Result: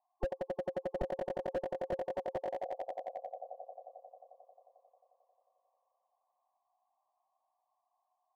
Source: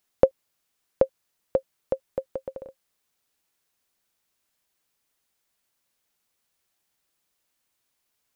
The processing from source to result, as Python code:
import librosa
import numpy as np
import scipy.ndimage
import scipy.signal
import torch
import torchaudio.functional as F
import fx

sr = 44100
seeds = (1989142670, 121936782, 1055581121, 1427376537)

p1 = fx.formant_cascade(x, sr, vowel='a')
p2 = fx.auto_swell(p1, sr, attack_ms=770.0, at=(1.02, 1.56))
p3 = fx.spec_gate(p2, sr, threshold_db=-15, keep='strong')
p4 = p3 + fx.echo_swell(p3, sr, ms=89, loudest=5, wet_db=-12.0, dry=0)
p5 = fx.slew_limit(p4, sr, full_power_hz=2.5)
y = p5 * 10.0 ** (15.5 / 20.0)